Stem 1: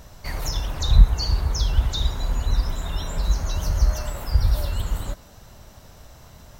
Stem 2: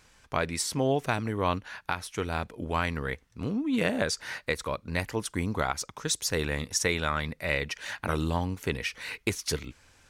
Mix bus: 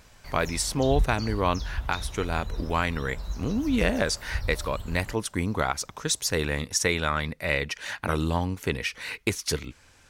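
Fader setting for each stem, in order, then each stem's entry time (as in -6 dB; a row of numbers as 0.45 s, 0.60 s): -12.0 dB, +2.5 dB; 0.00 s, 0.00 s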